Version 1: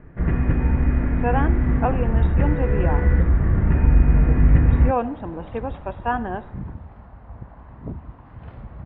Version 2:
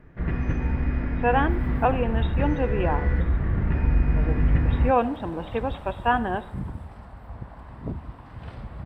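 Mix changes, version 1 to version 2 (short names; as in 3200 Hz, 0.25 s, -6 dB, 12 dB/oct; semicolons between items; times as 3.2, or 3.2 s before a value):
first sound -6.0 dB; master: remove air absorption 410 m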